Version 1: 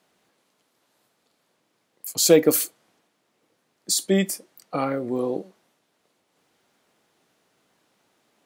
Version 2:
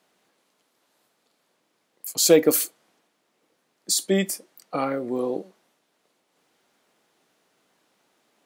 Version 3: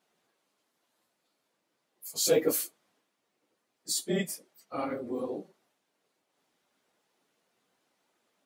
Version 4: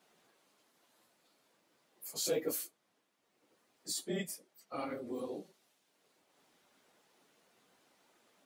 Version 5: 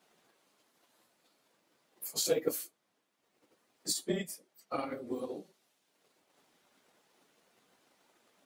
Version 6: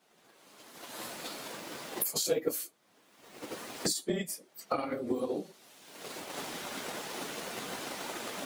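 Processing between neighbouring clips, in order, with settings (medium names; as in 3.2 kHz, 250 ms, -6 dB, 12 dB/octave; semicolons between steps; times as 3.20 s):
peaking EQ 83 Hz -10 dB 1.4 oct
phase randomisation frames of 50 ms; trim -8 dB
three bands compressed up and down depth 40%; trim -6.5 dB
transient shaper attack +8 dB, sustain -1 dB
recorder AGC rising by 28 dB/s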